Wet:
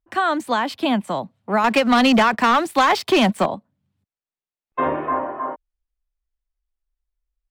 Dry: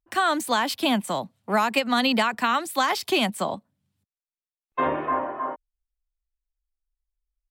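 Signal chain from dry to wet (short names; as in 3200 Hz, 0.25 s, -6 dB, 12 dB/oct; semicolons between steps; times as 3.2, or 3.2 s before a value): LPF 2000 Hz 6 dB/oct; 1.64–3.46 sample leveller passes 2; gain +3.5 dB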